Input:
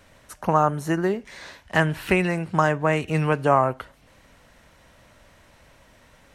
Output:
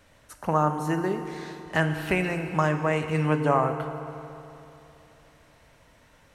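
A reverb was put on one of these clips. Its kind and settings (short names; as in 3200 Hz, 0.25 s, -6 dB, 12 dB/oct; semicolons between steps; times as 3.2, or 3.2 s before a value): FDN reverb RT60 3 s, high-frequency decay 0.8×, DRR 6.5 dB; gain -4.5 dB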